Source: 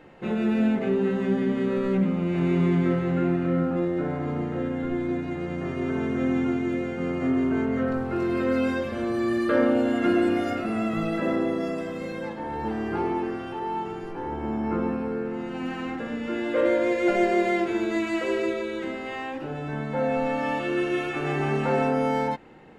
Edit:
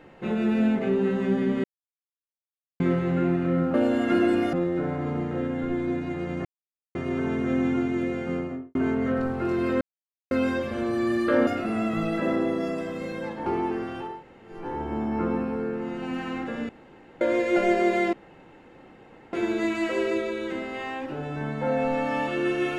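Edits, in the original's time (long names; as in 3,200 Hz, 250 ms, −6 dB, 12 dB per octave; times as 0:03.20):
0:01.64–0:02.80: silence
0:05.66: splice in silence 0.50 s
0:06.99–0:07.46: fade out and dull
0:08.52: splice in silence 0.50 s
0:09.68–0:10.47: move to 0:03.74
0:12.46–0:12.98: remove
0:13.64–0:14.06: fill with room tone, crossfade 0.24 s
0:16.21–0:16.73: fill with room tone
0:17.65: splice in room tone 1.20 s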